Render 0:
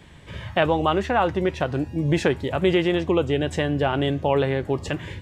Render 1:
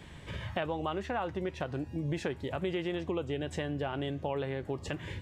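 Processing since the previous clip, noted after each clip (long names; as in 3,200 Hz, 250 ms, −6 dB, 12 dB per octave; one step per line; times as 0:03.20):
downward compressor 2.5 to 1, threshold −35 dBFS, peak gain reduction 13.5 dB
level −1.5 dB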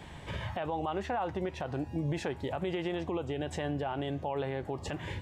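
parametric band 800 Hz +7.5 dB 0.72 octaves
brickwall limiter −26 dBFS, peak gain reduction 9 dB
level +1.5 dB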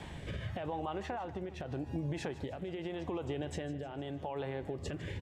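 downward compressor 6 to 1, threshold −39 dBFS, peak gain reduction 10 dB
rotating-speaker cabinet horn 0.85 Hz
repeating echo 153 ms, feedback 48%, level −15.5 dB
level +5 dB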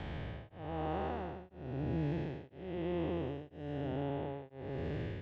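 spectrum smeared in time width 489 ms
high-frequency loss of the air 230 metres
tremolo along a rectified sine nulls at 1 Hz
level +6.5 dB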